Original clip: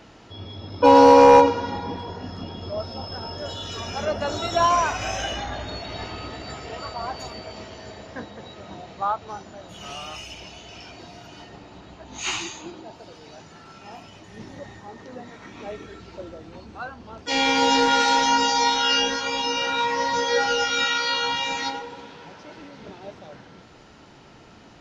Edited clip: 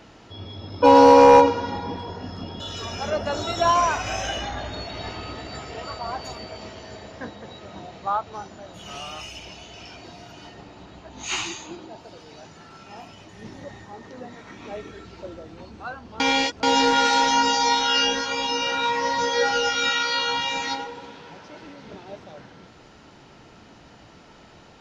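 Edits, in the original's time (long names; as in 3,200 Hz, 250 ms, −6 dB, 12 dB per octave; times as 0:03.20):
0:02.60–0:03.55: remove
0:17.15–0:17.58: reverse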